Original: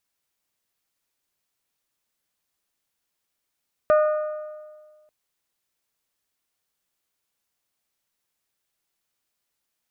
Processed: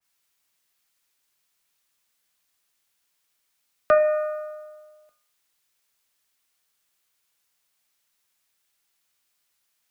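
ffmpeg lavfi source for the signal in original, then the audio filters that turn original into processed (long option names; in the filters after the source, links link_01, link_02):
-f lavfi -i "aevalsrc='0.224*pow(10,-3*t/1.64)*sin(2*PI*611*t)+0.0841*pow(10,-3*t/1.332)*sin(2*PI*1222*t)+0.0316*pow(10,-3*t/1.261)*sin(2*PI*1466.4*t)+0.0119*pow(10,-3*t/1.18)*sin(2*PI*1833*t)+0.00447*pow(10,-3*t/1.082)*sin(2*PI*2444*t)':duration=1.19:sample_rate=44100"
-filter_complex "[0:a]bandreject=frequency=48.87:width_type=h:width=4,bandreject=frequency=97.74:width_type=h:width=4,bandreject=frequency=146.61:width_type=h:width=4,bandreject=frequency=195.48:width_type=h:width=4,bandreject=frequency=244.35:width_type=h:width=4,bandreject=frequency=293.22:width_type=h:width=4,bandreject=frequency=342.09:width_type=h:width=4,bandreject=frequency=390.96:width_type=h:width=4,bandreject=frequency=439.83:width_type=h:width=4,bandreject=frequency=488.7:width_type=h:width=4,bandreject=frequency=537.57:width_type=h:width=4,bandreject=frequency=586.44:width_type=h:width=4,bandreject=frequency=635.31:width_type=h:width=4,bandreject=frequency=684.18:width_type=h:width=4,bandreject=frequency=733.05:width_type=h:width=4,bandreject=frequency=781.92:width_type=h:width=4,bandreject=frequency=830.79:width_type=h:width=4,bandreject=frequency=879.66:width_type=h:width=4,bandreject=frequency=928.53:width_type=h:width=4,bandreject=frequency=977.4:width_type=h:width=4,bandreject=frequency=1026.27:width_type=h:width=4,bandreject=frequency=1075.14:width_type=h:width=4,bandreject=frequency=1124.01:width_type=h:width=4,bandreject=frequency=1172.88:width_type=h:width=4,bandreject=frequency=1221.75:width_type=h:width=4,bandreject=frequency=1270.62:width_type=h:width=4,bandreject=frequency=1319.49:width_type=h:width=4,bandreject=frequency=1368.36:width_type=h:width=4,bandreject=frequency=1417.23:width_type=h:width=4,bandreject=frequency=1466.1:width_type=h:width=4,bandreject=frequency=1514.97:width_type=h:width=4,bandreject=frequency=1563.84:width_type=h:width=4,bandreject=frequency=1612.71:width_type=h:width=4,bandreject=frequency=1661.58:width_type=h:width=4,bandreject=frequency=1710.45:width_type=h:width=4,bandreject=frequency=1759.32:width_type=h:width=4,bandreject=frequency=1808.19:width_type=h:width=4,bandreject=frequency=1857.06:width_type=h:width=4,bandreject=frequency=1905.93:width_type=h:width=4,bandreject=frequency=1954.8:width_type=h:width=4,acrossover=split=190|310|940[link_01][link_02][link_03][link_04];[link_04]acontrast=66[link_05];[link_01][link_02][link_03][link_05]amix=inputs=4:normalize=0,adynamicequalizer=threshold=0.02:dfrequency=2100:dqfactor=0.7:tfrequency=2100:tqfactor=0.7:attack=5:release=100:ratio=0.375:range=3:mode=boostabove:tftype=highshelf"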